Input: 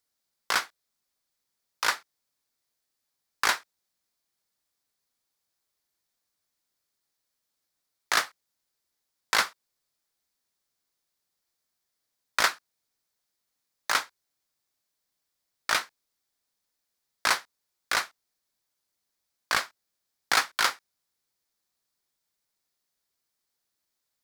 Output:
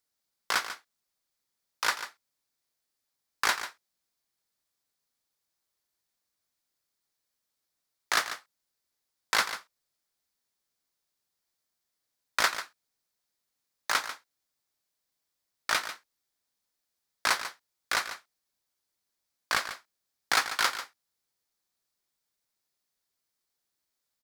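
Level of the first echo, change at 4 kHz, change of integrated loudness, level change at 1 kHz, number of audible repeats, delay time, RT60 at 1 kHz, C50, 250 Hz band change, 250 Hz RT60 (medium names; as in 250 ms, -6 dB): -11.5 dB, -1.5 dB, -2.5 dB, -1.5 dB, 1, 143 ms, no reverb, no reverb, -1.5 dB, no reverb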